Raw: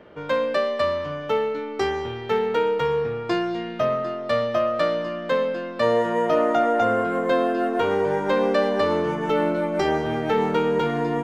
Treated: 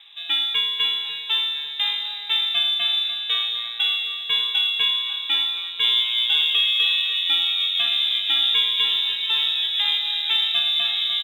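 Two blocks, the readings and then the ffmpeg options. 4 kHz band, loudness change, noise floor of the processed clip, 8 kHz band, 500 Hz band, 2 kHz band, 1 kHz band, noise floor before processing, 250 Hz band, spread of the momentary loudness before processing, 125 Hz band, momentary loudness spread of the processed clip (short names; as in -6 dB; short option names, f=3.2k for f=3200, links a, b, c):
+21.5 dB, +4.0 dB, -32 dBFS, n/a, under -30 dB, +2.5 dB, -15.0 dB, -33 dBFS, under -30 dB, 5 LU, under -25 dB, 5 LU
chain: -filter_complex "[0:a]lowpass=f=3.4k:t=q:w=0.5098,lowpass=f=3.4k:t=q:w=0.6013,lowpass=f=3.4k:t=q:w=0.9,lowpass=f=3.4k:t=q:w=2.563,afreqshift=-4000,acrusher=bits=8:mode=log:mix=0:aa=0.000001,asplit=2[a][b];[b]adelay=546,lowpass=f=2k:p=1,volume=-8dB,asplit=2[c][d];[d]adelay=546,lowpass=f=2k:p=1,volume=0.54,asplit=2[e][f];[f]adelay=546,lowpass=f=2k:p=1,volume=0.54,asplit=2[g][h];[h]adelay=546,lowpass=f=2k:p=1,volume=0.54,asplit=2[i][j];[j]adelay=546,lowpass=f=2k:p=1,volume=0.54,asplit=2[k][l];[l]adelay=546,lowpass=f=2k:p=1,volume=0.54[m];[a][c][e][g][i][k][m]amix=inputs=7:normalize=0"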